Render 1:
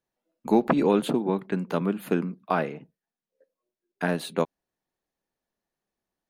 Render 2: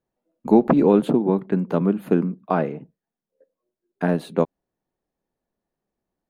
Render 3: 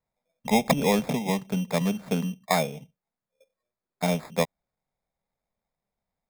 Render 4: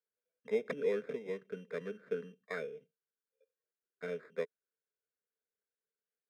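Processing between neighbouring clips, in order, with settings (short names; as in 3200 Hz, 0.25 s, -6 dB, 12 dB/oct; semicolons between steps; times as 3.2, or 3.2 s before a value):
tilt shelf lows +7 dB, about 1300 Hz
fixed phaser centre 810 Hz, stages 4; sample-and-hold 15×
double band-pass 820 Hz, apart 1.8 oct; gain -1.5 dB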